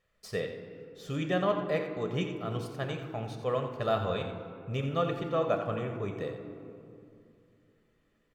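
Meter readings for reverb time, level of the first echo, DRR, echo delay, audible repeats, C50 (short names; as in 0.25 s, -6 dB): 2.7 s, -10.0 dB, 3.5 dB, 87 ms, 1, 5.5 dB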